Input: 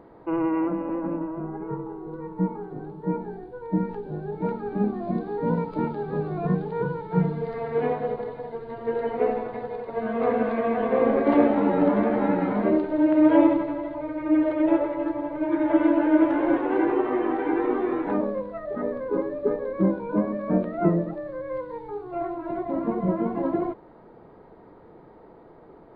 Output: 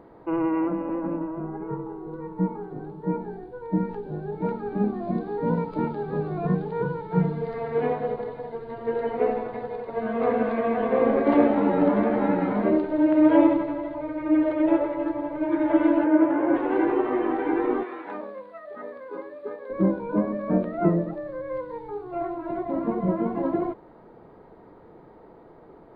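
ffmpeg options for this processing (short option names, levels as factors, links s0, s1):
-filter_complex "[0:a]asettb=1/sr,asplit=3[s0][s1][s2];[s0]atrim=end=16.044[s3];[s1]atrim=start=16.04:end=16.55,asetpts=PTS-STARTPTS,afade=t=in:d=0.004:c=qsin,afade=t=out:st=0.506:d=0.004:c=qsin,highpass=110,lowpass=2000[s4];[s2]atrim=start=16.546[s5];[s3][s4]acrossfade=d=0.004:c1=hsin:c2=qsin[s6];[s6][s5]acrossfade=d=0.004:c1=qsin:c2=hsin,asettb=1/sr,asplit=3[s7][s8][s9];[s7]atrim=end=17.834[s10];[s8]atrim=start=17.83:end=19.7,asetpts=PTS-STARTPTS,afade=t=in:d=0.004:c=qsin,afade=t=out:st=1.866:d=0.004:c=qsin,highpass=f=1400:p=1[s11];[s9]atrim=start=19.696[s12];[s10][s11]acrossfade=d=0.004:c1=hsin:c2=qsin[s13];[s13][s12]acrossfade=d=0.004:c1=qsin:c2=hsin"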